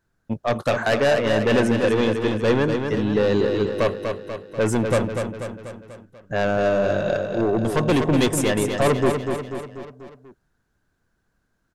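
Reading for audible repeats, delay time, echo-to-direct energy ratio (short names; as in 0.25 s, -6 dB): 5, 0.244 s, -4.5 dB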